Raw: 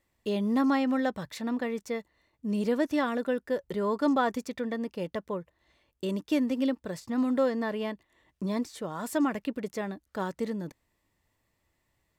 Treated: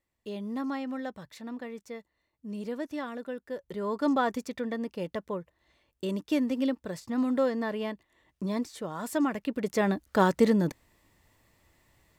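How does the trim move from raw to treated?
3.45 s -8 dB
4.11 s -0.5 dB
9.43 s -0.5 dB
9.92 s +10 dB

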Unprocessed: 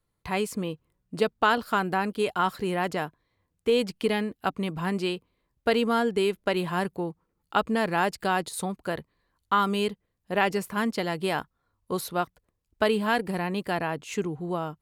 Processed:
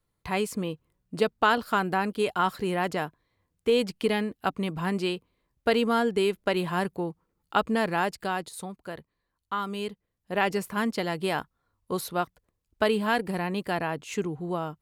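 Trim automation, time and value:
7.80 s 0 dB
8.73 s -7.5 dB
9.66 s -7.5 dB
10.53 s -0.5 dB

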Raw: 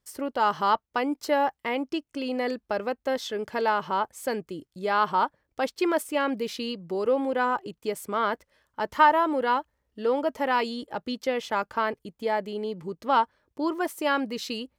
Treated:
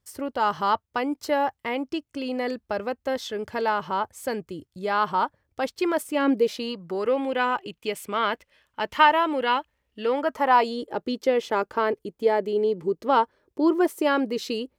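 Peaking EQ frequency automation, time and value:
peaking EQ +10.5 dB 0.88 oct
5.91 s 89 Hz
6.54 s 650 Hz
7.22 s 2.7 kHz
10.02 s 2.7 kHz
10.88 s 390 Hz

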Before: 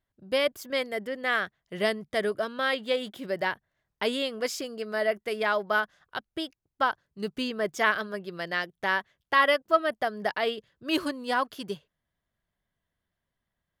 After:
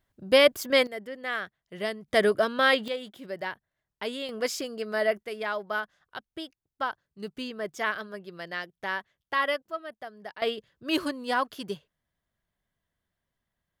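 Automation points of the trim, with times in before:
+7 dB
from 0.87 s -5 dB
from 2.08 s +5.5 dB
from 2.88 s -5.5 dB
from 4.29 s +1 dB
from 5.23 s -5 dB
from 9.70 s -12.5 dB
from 10.42 s 0 dB

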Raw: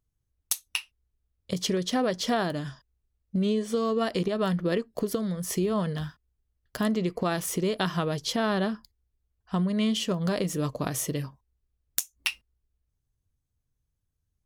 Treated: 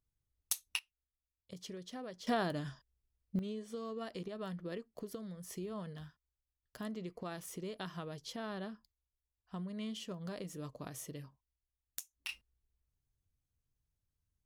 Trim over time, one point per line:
-7.5 dB
from 0.79 s -19.5 dB
from 2.27 s -7 dB
from 3.39 s -16 dB
from 12.29 s -6 dB

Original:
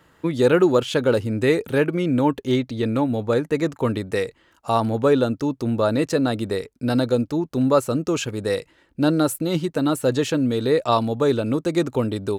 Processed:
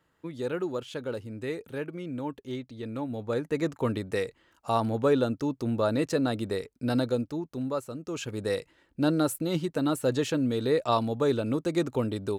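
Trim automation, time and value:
2.77 s -15 dB
3.64 s -6 dB
6.98 s -6 dB
7.99 s -16 dB
8.34 s -6 dB

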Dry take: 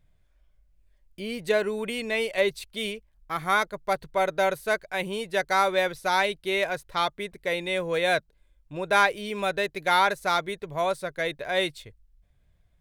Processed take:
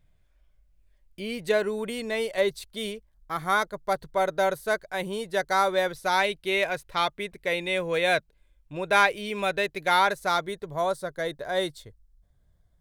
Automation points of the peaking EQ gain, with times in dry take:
peaking EQ 2.5 kHz 0.54 oct
1.35 s +1 dB
1.82 s -7.5 dB
5.81 s -7.5 dB
6.36 s +2.5 dB
9.60 s +2.5 dB
10.40 s -6 dB
10.99 s -14.5 dB

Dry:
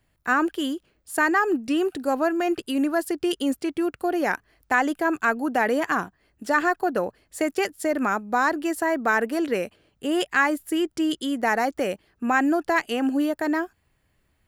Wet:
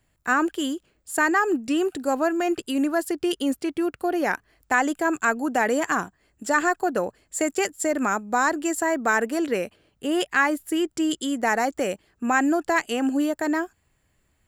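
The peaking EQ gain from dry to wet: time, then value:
peaking EQ 7.4 kHz 0.25 oct
2.80 s +9.5 dB
3.31 s +2.5 dB
4.29 s +2.5 dB
5.03 s +14.5 dB
9.23 s +14.5 dB
9.64 s +3 dB
10.59 s +3 dB
11.12 s +11.5 dB

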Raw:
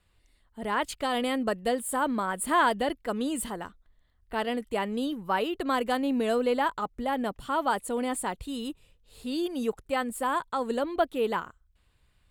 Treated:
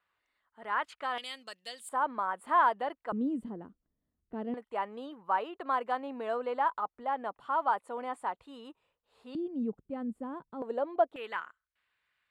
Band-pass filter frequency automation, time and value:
band-pass filter, Q 1.6
1.3 kHz
from 1.18 s 4.4 kHz
from 1.89 s 990 Hz
from 3.12 s 250 Hz
from 4.54 s 980 Hz
from 9.35 s 210 Hz
from 10.62 s 690 Hz
from 11.16 s 1.8 kHz

